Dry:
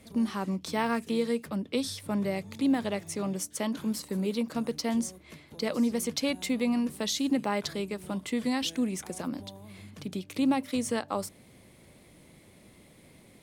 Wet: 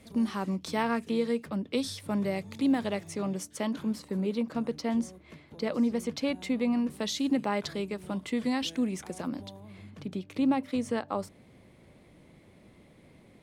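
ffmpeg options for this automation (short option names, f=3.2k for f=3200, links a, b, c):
-af "asetnsamples=n=441:p=0,asendcmd='0.83 lowpass f 4000;1.71 lowpass f 8000;3.07 lowpass f 4300;3.83 lowpass f 2300;6.9 lowpass f 4600;9.6 lowpass f 2200',lowpass=f=8.8k:p=1"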